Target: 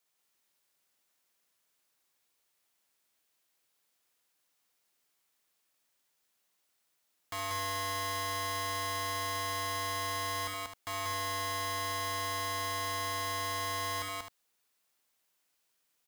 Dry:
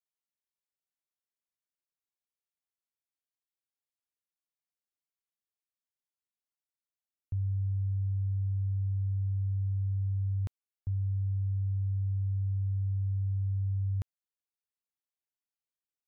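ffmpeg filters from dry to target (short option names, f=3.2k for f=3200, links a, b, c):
-af "lowshelf=f=150:g=-10.5,acontrast=82,aeval=exprs='(mod(94.4*val(0)+1,2)-1)/94.4':c=same,aecho=1:1:64.14|186.6|262.4:0.447|0.794|0.316,volume=8dB"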